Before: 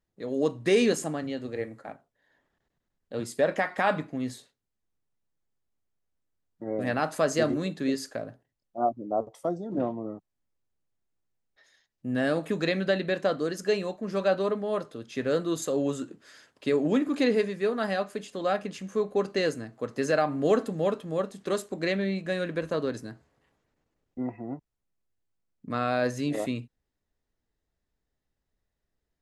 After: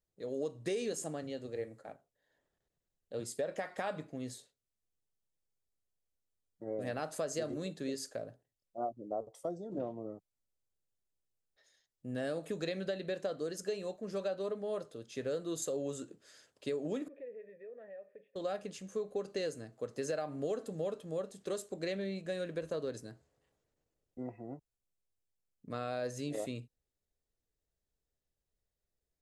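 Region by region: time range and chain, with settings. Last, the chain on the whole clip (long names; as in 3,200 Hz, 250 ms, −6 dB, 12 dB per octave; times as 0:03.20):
0:17.08–0:18.36: formant resonators in series e + downward compressor 2.5 to 1, threshold −43 dBFS
whole clip: octave-band graphic EQ 250/500/1,000/2,000/8,000 Hz −5/+4/−5/−4/+5 dB; downward compressor, threshold −26 dBFS; level −6.5 dB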